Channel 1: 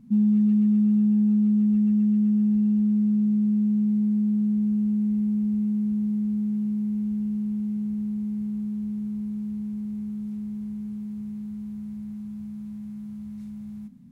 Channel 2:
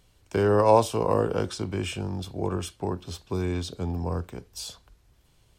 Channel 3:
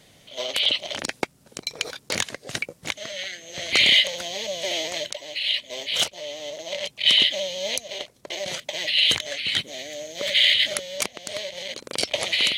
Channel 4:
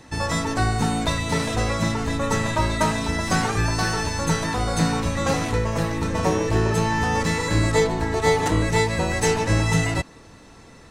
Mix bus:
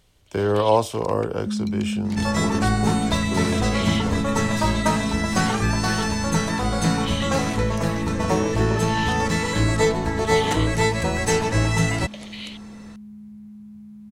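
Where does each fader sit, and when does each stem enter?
-6.0, +0.5, -16.0, 0.0 dB; 1.35, 0.00, 0.00, 2.05 s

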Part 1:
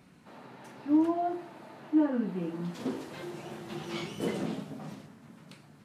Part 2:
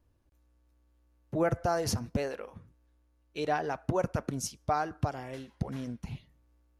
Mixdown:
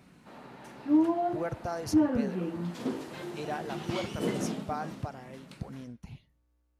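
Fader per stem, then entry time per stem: +1.0, -6.0 dB; 0.00, 0.00 s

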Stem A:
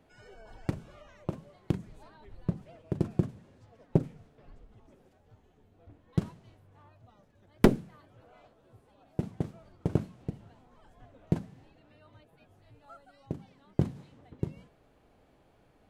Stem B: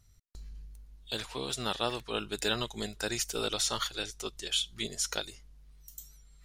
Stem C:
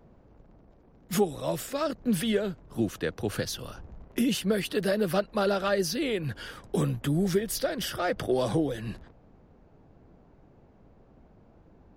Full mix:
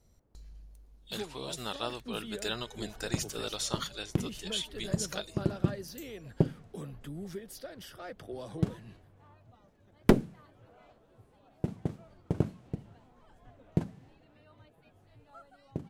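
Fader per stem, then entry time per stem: -1.0, -4.5, -15.5 dB; 2.45, 0.00, 0.00 s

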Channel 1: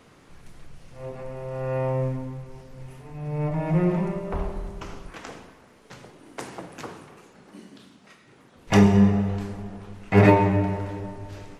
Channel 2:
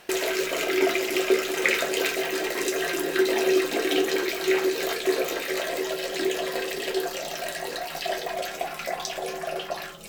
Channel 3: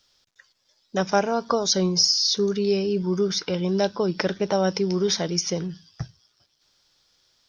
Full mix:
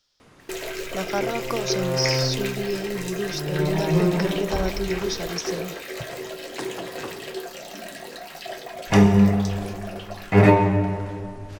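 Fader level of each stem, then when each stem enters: +1.0, -6.0, -6.0 dB; 0.20, 0.40, 0.00 s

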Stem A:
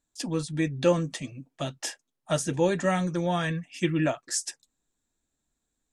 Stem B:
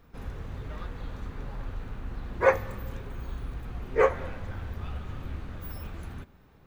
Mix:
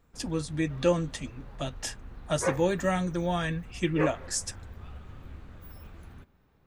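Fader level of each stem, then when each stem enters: -2.0, -8.0 dB; 0.00, 0.00 s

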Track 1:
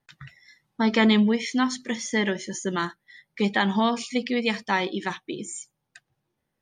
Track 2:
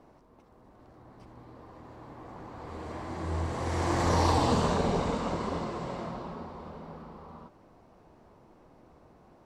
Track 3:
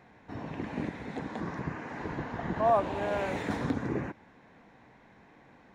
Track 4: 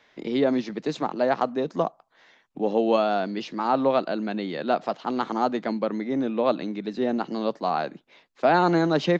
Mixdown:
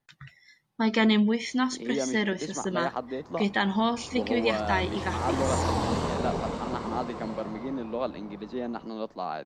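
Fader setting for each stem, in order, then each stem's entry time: -3.0 dB, -2.5 dB, off, -8.0 dB; 0.00 s, 1.40 s, off, 1.55 s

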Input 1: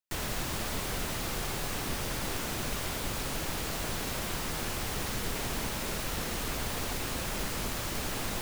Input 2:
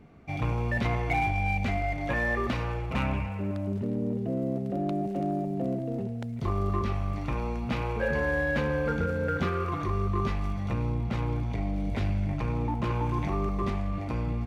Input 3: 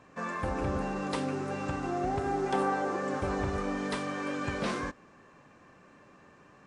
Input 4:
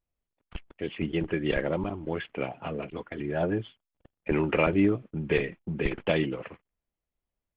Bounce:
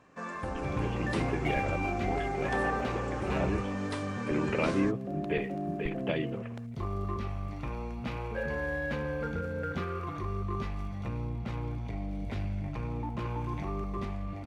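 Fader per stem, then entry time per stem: off, -6.0 dB, -3.5 dB, -6.5 dB; off, 0.35 s, 0.00 s, 0.00 s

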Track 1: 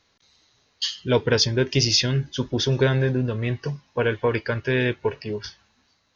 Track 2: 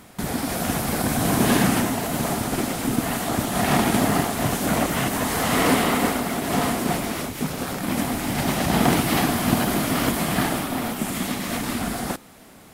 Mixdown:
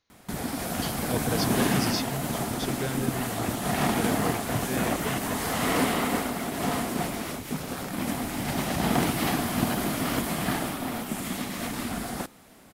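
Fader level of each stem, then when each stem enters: -12.5, -5.5 dB; 0.00, 0.10 s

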